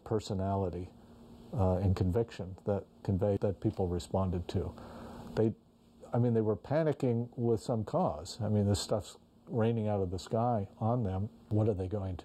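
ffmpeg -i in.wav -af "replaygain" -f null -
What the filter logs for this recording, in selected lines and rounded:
track_gain = +14.3 dB
track_peak = 0.094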